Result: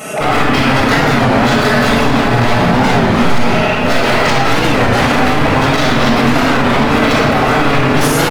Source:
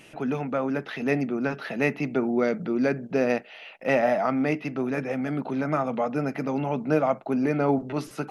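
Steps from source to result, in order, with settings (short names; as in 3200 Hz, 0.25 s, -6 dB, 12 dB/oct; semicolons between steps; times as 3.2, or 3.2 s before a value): HPF 440 Hz 6 dB/oct; band shelf 3000 Hz -11.5 dB; comb 4.7 ms, depth 77%; dynamic EQ 600 Hz, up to -6 dB, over -37 dBFS, Q 1.8; reverse; compressor 10:1, threshold -33 dBFS, peak gain reduction 13.5 dB; reverse; wavefolder -39.5 dBFS; on a send: diffused feedback echo 0.684 s, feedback 46%, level -8 dB; on the sum: shoebox room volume 3400 m³, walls mixed, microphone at 6.6 m; maximiser +25.5 dB; record warp 33 1/3 rpm, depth 160 cents; gain -1 dB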